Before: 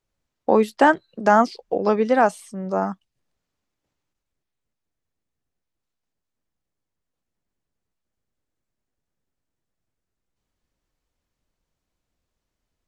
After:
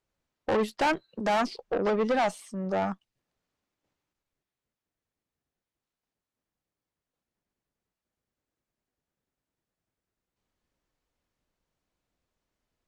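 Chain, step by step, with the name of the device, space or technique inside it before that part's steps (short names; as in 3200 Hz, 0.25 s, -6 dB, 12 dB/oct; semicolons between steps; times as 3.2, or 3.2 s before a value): tube preamp driven hard (tube stage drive 22 dB, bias 0.4; low shelf 130 Hz -6 dB; high shelf 5400 Hz -6 dB); gain +1 dB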